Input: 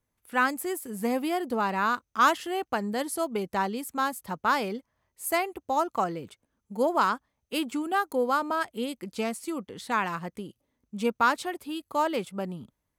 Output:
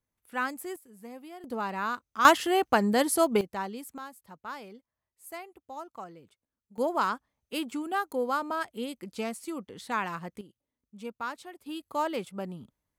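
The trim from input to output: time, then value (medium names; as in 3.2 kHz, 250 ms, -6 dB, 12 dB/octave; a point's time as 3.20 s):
-6.5 dB
from 0.76 s -17 dB
from 1.44 s -5.5 dB
from 2.25 s +5.5 dB
from 3.41 s -6.5 dB
from 3.98 s -15 dB
from 6.78 s -3.5 dB
from 10.41 s -12.5 dB
from 11.66 s -3.5 dB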